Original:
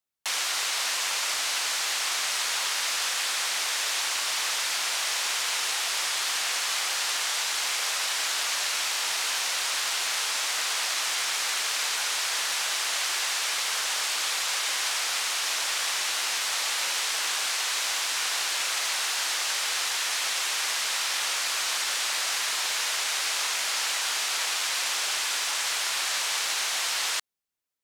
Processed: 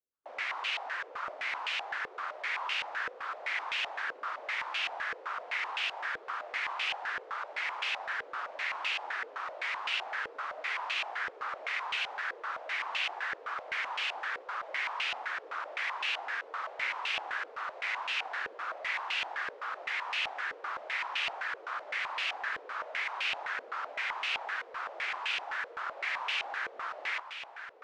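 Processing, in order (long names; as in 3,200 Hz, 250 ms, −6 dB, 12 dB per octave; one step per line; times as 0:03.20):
gate on every frequency bin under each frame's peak −25 dB strong
feedback delay with all-pass diffusion 1,671 ms, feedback 44%, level −9.5 dB
low-pass on a step sequencer 7.8 Hz 480–2,700 Hz
level −8.5 dB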